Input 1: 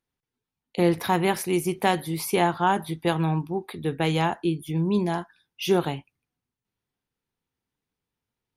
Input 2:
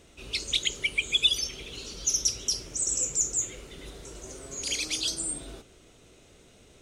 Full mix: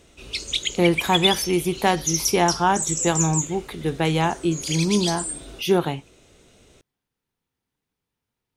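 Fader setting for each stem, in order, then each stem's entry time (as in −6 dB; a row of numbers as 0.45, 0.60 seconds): +2.5, +2.0 decibels; 0.00, 0.00 seconds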